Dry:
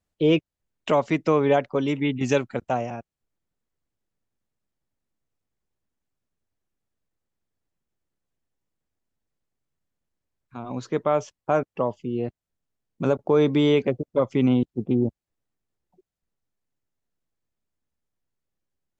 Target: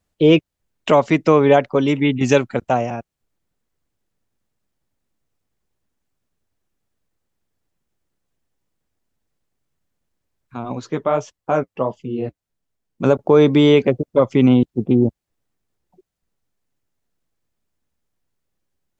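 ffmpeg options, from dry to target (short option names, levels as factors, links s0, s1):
-filter_complex "[0:a]asettb=1/sr,asplit=3[s0][s1][s2];[s0]atrim=end=10.734[s3];[s1]atrim=start=10.73:end=13.04,asetpts=PTS-STARTPTS,afade=t=in:d=0.004:c=qsin,afade=t=out:st=2.306:d=0.004:c=qsin,flanger=delay=1.2:depth=9.2:regen=-36:speed=1.5:shape=triangular[s4];[s2]atrim=start=13.036[s5];[s3][s4]acrossfade=d=0.004:c1=hsin:c2=qsin[s6];[s6][s5]acrossfade=d=0.004:c1=qsin:c2=hsin,volume=2.24"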